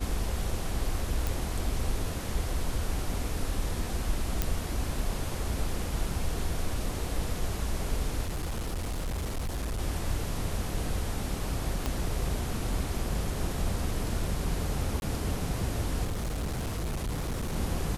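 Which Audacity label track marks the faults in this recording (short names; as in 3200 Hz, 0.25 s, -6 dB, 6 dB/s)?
1.270000	1.270000	pop
4.420000	4.420000	pop -11 dBFS
8.250000	9.790000	clipped -28.5 dBFS
11.860000	11.860000	pop -15 dBFS
15.000000	15.020000	gap 21 ms
16.040000	17.560000	clipped -28.5 dBFS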